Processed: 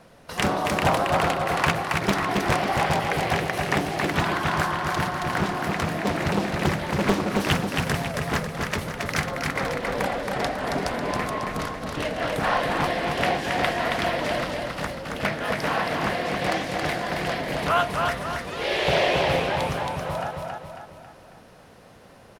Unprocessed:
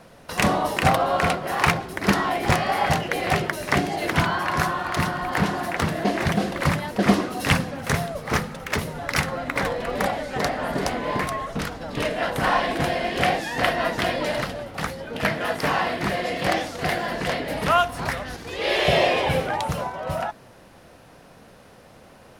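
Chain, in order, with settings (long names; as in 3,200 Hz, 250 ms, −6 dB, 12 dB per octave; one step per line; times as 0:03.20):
repeating echo 273 ms, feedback 46%, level −3.5 dB
highs frequency-modulated by the lows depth 0.9 ms
level −3 dB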